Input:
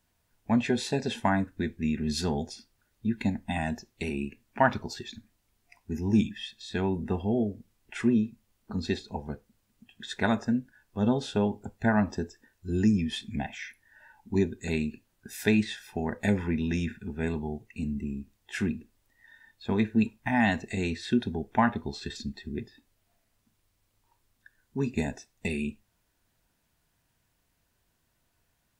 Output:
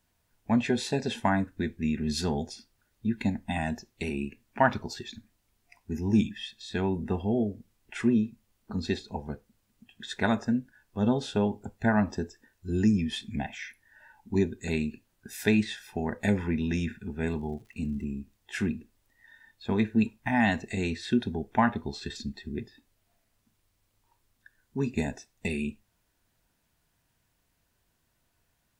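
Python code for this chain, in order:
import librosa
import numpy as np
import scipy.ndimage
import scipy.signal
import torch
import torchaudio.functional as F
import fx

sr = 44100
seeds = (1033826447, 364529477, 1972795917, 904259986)

y = fx.dmg_crackle(x, sr, seeds[0], per_s=110.0, level_db=-49.0, at=(17.25, 18.03), fade=0.02)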